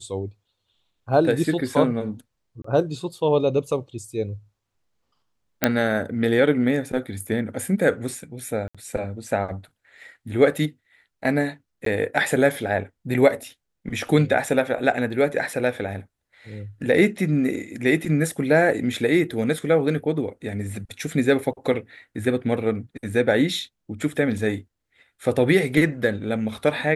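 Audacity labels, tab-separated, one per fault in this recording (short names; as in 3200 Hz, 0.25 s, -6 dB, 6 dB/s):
2.620000	2.640000	gap 24 ms
5.640000	5.640000	pop -2 dBFS
8.680000	8.750000	gap 66 ms
11.850000	11.860000	gap 13 ms
24.380000	24.380000	gap 2.4 ms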